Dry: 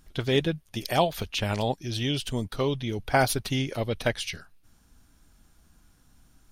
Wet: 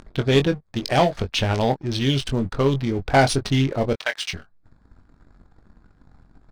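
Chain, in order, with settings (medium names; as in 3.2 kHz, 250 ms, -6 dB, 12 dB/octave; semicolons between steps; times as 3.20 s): local Wiener filter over 15 samples; 3.93–4.33 s: high-pass 1.1 kHz 12 dB/octave; upward compressor, threshold -43 dBFS; steep low-pass 8.9 kHz; band-stop 7 kHz, Q 10; waveshaping leveller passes 2; doubling 22 ms -8 dB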